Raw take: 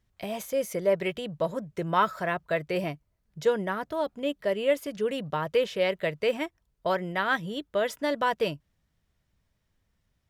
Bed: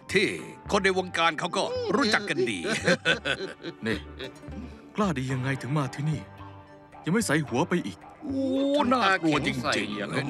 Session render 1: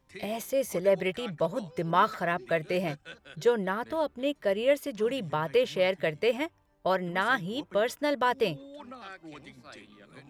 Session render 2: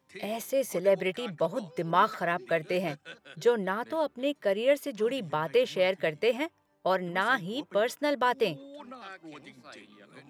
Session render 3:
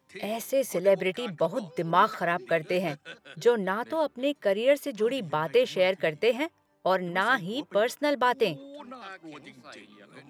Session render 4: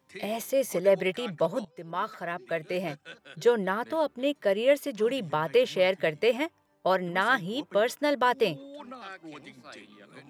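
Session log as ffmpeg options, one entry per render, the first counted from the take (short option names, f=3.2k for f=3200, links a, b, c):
-filter_complex "[1:a]volume=-22dB[a];[0:a][a]amix=inputs=2:normalize=0"
-af "highpass=150"
-af "volume=2dB"
-filter_complex "[0:a]asplit=2[a][b];[a]atrim=end=1.65,asetpts=PTS-STARTPTS,afade=t=out:st=1.646:d=0.004:c=hsin:silence=0.177828[c];[b]atrim=start=1.65,asetpts=PTS-STARTPTS,afade=t=in:d=1.89:silence=0.177828[d];[c][d]concat=n=2:v=0:a=1"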